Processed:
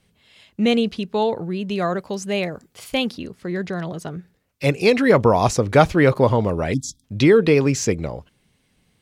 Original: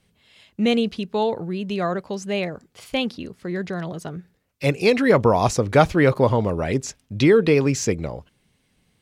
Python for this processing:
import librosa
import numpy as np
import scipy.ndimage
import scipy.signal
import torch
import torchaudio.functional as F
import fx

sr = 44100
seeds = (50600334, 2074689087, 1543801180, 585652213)

y = fx.high_shelf(x, sr, hz=8700.0, db=8.5, at=(1.76, 3.19))
y = fx.spec_erase(y, sr, start_s=6.74, length_s=0.3, low_hz=340.0, high_hz=3200.0)
y = F.gain(torch.from_numpy(y), 1.5).numpy()